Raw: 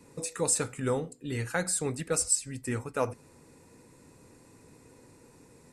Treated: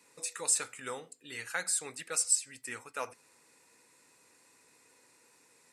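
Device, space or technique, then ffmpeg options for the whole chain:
filter by subtraction: -filter_complex "[0:a]asplit=2[link_01][link_02];[link_02]lowpass=2300,volume=-1[link_03];[link_01][link_03]amix=inputs=2:normalize=0,volume=-1.5dB"

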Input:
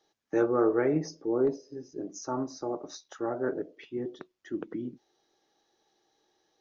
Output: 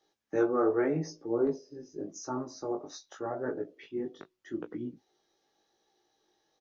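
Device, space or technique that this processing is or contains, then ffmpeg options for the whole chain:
double-tracked vocal: -filter_complex "[0:a]asplit=2[link_01][link_02];[link_02]adelay=19,volume=-12dB[link_03];[link_01][link_03]amix=inputs=2:normalize=0,flanger=delay=16.5:depth=4.1:speed=0.84,volume=1dB"

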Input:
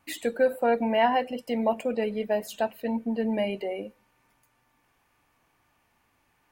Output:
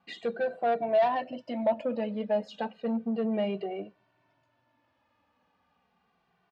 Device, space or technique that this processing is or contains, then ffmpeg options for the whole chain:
barber-pole flanger into a guitar amplifier: -filter_complex "[0:a]asplit=2[link_01][link_02];[link_02]adelay=2.1,afreqshift=-0.33[link_03];[link_01][link_03]amix=inputs=2:normalize=1,asoftclip=type=tanh:threshold=-23.5dB,highpass=86,equalizer=frequency=180:width_type=q:width=4:gain=6,equalizer=frequency=630:width_type=q:width=4:gain=7,equalizer=frequency=2200:width_type=q:width=4:gain=-6,lowpass=frequency=4500:width=0.5412,lowpass=frequency=4500:width=1.3066"

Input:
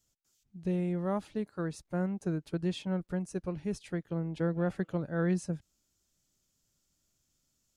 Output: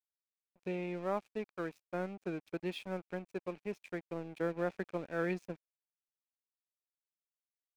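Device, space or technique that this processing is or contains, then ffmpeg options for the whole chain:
pocket radio on a weak battery: -af "highpass=320,lowpass=4400,aeval=exprs='sgn(val(0))*max(abs(val(0))-0.00251,0)':channel_layout=same,equalizer=frequency=2400:width_type=o:width=0.25:gain=10.5"

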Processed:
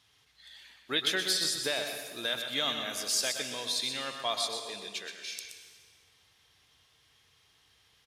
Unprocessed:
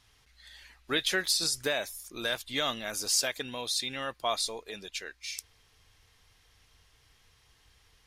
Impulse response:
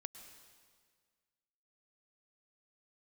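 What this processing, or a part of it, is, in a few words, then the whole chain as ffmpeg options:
PA in a hall: -filter_complex "[0:a]highpass=110,equalizer=frequency=3400:width_type=o:width=0.59:gain=5,aecho=1:1:124:0.398[link_01];[1:a]atrim=start_sample=2205[link_02];[link_01][link_02]afir=irnorm=-1:irlink=0,volume=1.5dB"

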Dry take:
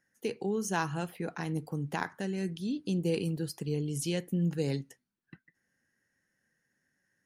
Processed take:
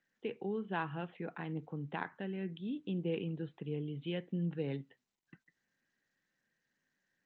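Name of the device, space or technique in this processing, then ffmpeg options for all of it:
Bluetooth headset: -af "highpass=120,aresample=8000,aresample=44100,volume=-5.5dB" -ar 16000 -c:a sbc -b:a 64k

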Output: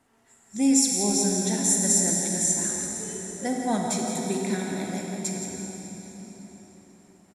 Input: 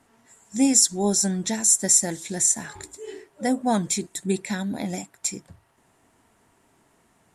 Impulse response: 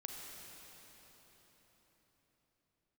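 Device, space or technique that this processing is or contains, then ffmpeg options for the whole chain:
cave: -filter_complex "[0:a]aecho=1:1:170:0.355[link_01];[1:a]atrim=start_sample=2205[link_02];[link_01][link_02]afir=irnorm=-1:irlink=0"

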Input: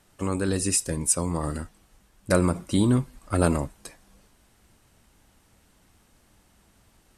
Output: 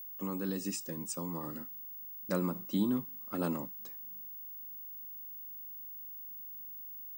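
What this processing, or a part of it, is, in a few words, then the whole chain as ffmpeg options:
old television with a line whistle: -af "highpass=frequency=180:width=0.5412,highpass=frequency=180:width=1.3066,equalizer=frequency=200:width_type=q:width=4:gain=5,equalizer=frequency=410:width_type=q:width=4:gain=-4,equalizer=frequency=660:width_type=q:width=4:gain=-7,equalizer=frequency=1500:width_type=q:width=4:gain=-6,equalizer=frequency=2300:width_type=q:width=4:gain=-7,equalizer=frequency=4400:width_type=q:width=4:gain=-5,lowpass=frequency=6700:width=0.5412,lowpass=frequency=6700:width=1.3066,aeval=exprs='val(0)+0.02*sin(2*PI*15625*n/s)':channel_layout=same,volume=-9dB"

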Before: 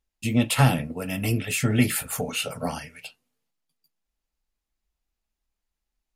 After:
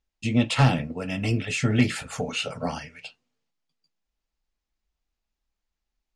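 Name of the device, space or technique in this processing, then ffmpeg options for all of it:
synthesiser wavefolder: -af "aeval=exprs='0.376*(abs(mod(val(0)/0.376+3,4)-2)-1)':channel_layout=same,lowpass=frequency=6900:width=0.5412,lowpass=frequency=6900:width=1.3066"

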